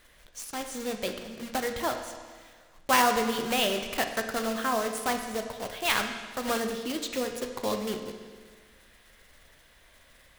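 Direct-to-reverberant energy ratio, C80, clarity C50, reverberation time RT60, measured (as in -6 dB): 5.0 dB, 8.0 dB, 7.0 dB, 1.6 s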